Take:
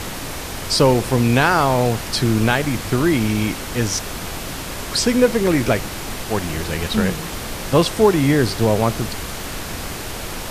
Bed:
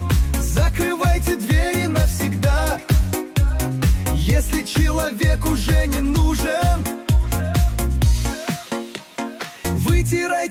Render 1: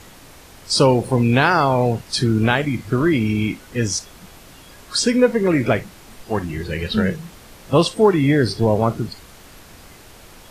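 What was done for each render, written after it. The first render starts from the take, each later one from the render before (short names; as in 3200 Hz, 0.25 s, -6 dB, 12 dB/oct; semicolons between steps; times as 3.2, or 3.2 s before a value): noise print and reduce 15 dB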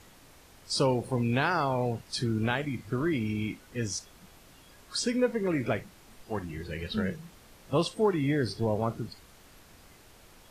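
gain -11.5 dB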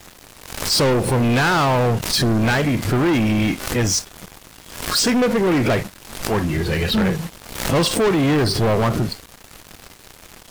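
sample leveller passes 5; backwards sustainer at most 82 dB/s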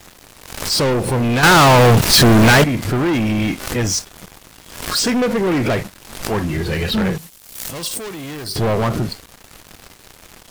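1.43–2.64 sample leveller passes 5; 7.18–8.56 pre-emphasis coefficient 0.8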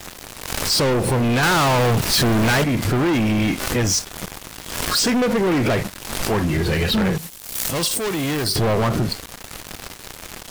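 sample leveller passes 2; compressor, threshold -18 dBFS, peak gain reduction 10 dB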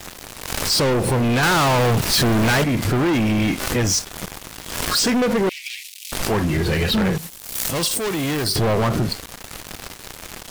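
5.49–6.12 steep high-pass 2300 Hz 48 dB/oct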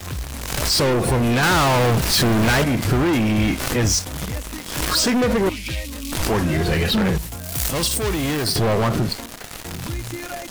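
add bed -12 dB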